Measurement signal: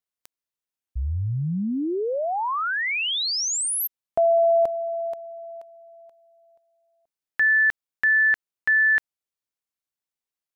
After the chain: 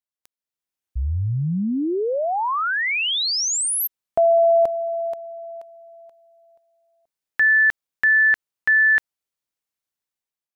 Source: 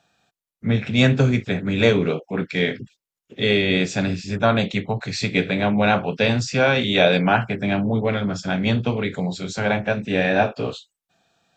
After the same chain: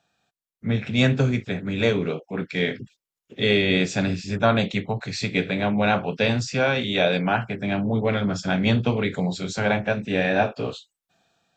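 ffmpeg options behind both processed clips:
ffmpeg -i in.wav -af "dynaudnorm=framelen=170:gausssize=7:maxgain=9dB,volume=-6dB" out.wav

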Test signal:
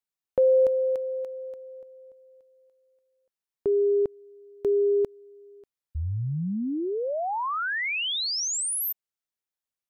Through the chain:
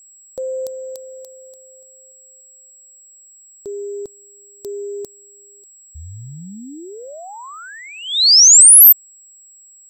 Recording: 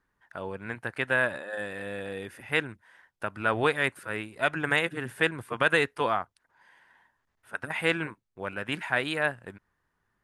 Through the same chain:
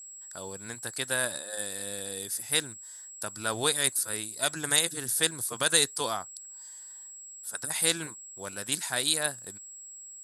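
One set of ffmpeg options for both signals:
ffmpeg -i in.wav -af "highshelf=frequency=3100:width_type=q:width=1.5:gain=8.5,aeval=exprs='val(0)+0.00158*sin(2*PI*7700*n/s)':channel_layout=same,aexciter=amount=9.2:drive=1:freq=4100,volume=-5dB" out.wav

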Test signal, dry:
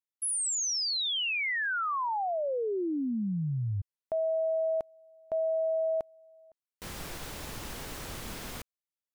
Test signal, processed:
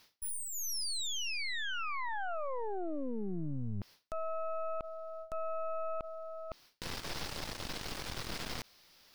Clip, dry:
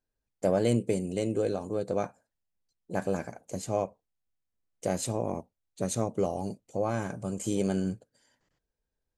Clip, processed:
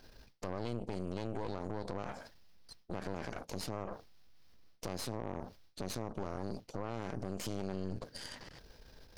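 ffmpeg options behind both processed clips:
ffmpeg -i in.wav -af "areverse,acompressor=mode=upward:threshold=-36dB:ratio=2.5:attack=16:release=93:knee=2.83:detection=peak,areverse,highshelf=frequency=6200:width_type=q:width=3:gain=-7,acompressor=threshold=-38dB:ratio=10:attack=0.58:release=56:knee=1:detection=peak,aeval=exprs='0.0299*(cos(1*acos(clip(val(0)/0.0299,-1,1)))-cos(1*PI/2))+0.0133*(cos(4*acos(clip(val(0)/0.0299,-1,1)))-cos(4*PI/2))':channel_layout=same" out.wav

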